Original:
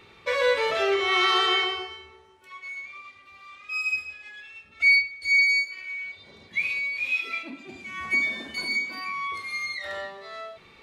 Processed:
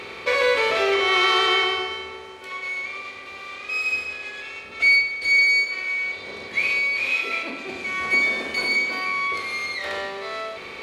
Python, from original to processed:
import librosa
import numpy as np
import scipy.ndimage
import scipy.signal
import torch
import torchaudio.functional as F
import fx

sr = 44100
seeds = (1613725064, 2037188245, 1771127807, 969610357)

y = fx.bin_compress(x, sr, power=0.6)
y = F.gain(torch.from_numpy(y), 1.0).numpy()